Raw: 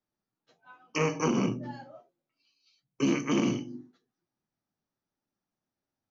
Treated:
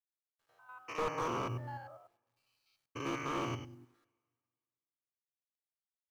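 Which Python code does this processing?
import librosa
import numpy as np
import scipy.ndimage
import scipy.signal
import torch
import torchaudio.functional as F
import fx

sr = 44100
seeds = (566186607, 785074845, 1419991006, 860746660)

y = fx.spec_steps(x, sr, hold_ms=100)
y = fx.curve_eq(y, sr, hz=(120.0, 190.0, 350.0, 1200.0, 4100.0), db=(0, -22, -8, 5, -8))
y = fx.quant_companded(y, sr, bits=8)
y = fx.rev_double_slope(y, sr, seeds[0], early_s=0.46, late_s=2.0, knee_db=-18, drr_db=19.5)
y = fx.slew_limit(y, sr, full_power_hz=27.0)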